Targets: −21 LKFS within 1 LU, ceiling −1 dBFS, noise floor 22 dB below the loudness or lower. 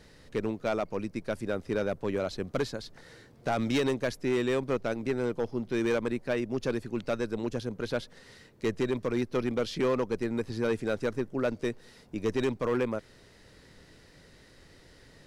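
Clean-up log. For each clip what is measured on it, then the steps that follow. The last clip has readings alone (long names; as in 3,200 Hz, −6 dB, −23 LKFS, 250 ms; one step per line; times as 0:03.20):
share of clipped samples 1.4%; peaks flattened at −21.5 dBFS; integrated loudness −31.5 LKFS; sample peak −21.5 dBFS; target loudness −21.0 LKFS
→ clipped peaks rebuilt −21.5 dBFS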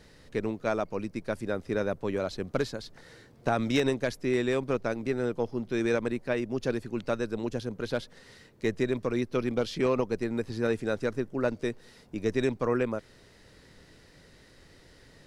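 share of clipped samples 0.0%; integrated loudness −30.5 LKFS; sample peak −12.5 dBFS; target loudness −21.0 LKFS
→ level +9.5 dB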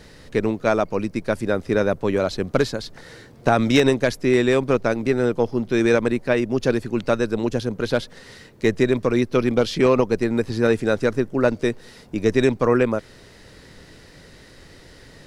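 integrated loudness −21.0 LKFS; sample peak −3.0 dBFS; background noise floor −47 dBFS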